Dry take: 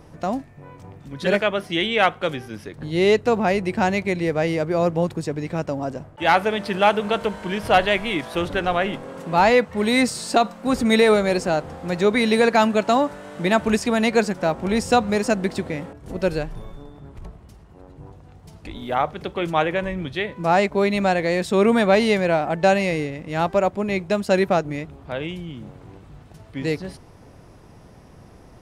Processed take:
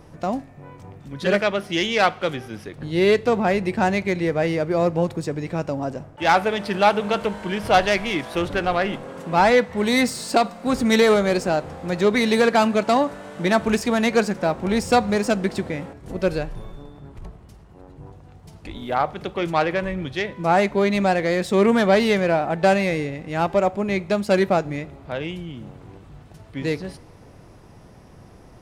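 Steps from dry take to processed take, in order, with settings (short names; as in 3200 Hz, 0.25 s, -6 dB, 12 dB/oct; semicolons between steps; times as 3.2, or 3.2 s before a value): self-modulated delay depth 0.075 ms; on a send: reverb, pre-delay 3 ms, DRR 17.5 dB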